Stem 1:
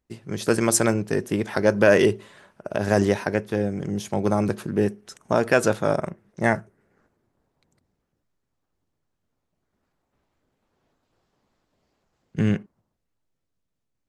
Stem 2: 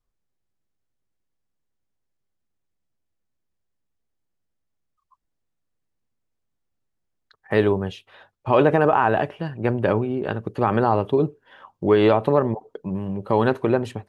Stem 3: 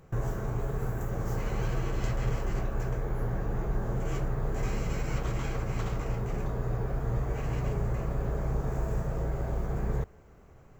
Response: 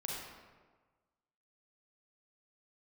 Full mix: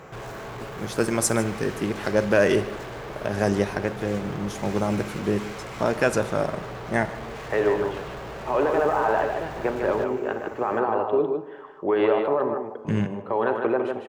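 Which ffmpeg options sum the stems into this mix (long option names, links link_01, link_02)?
-filter_complex "[0:a]adelay=500,volume=-4dB,asplit=3[link_01][link_02][link_03];[link_02]volume=-13.5dB[link_04];[link_03]volume=-17dB[link_05];[1:a]acrossover=split=320 2500:gain=0.1 1 0.141[link_06][link_07][link_08];[link_06][link_07][link_08]amix=inputs=3:normalize=0,alimiter=limit=-15dB:level=0:latency=1:release=17,volume=-1.5dB,asplit=3[link_09][link_10][link_11];[link_10]volume=-7dB[link_12];[link_11]volume=-3dB[link_13];[2:a]asplit=2[link_14][link_15];[link_15]highpass=frequency=720:poles=1,volume=41dB,asoftclip=type=tanh:threshold=-16.5dB[link_16];[link_14][link_16]amix=inputs=2:normalize=0,lowpass=frequency=3500:poles=1,volume=-6dB,volume=-13.5dB,asplit=2[link_17][link_18];[link_18]volume=-12dB[link_19];[3:a]atrim=start_sample=2205[link_20];[link_04][link_12]amix=inputs=2:normalize=0[link_21];[link_21][link_20]afir=irnorm=-1:irlink=0[link_22];[link_05][link_13][link_19]amix=inputs=3:normalize=0,aecho=0:1:151:1[link_23];[link_01][link_09][link_17][link_22][link_23]amix=inputs=5:normalize=0"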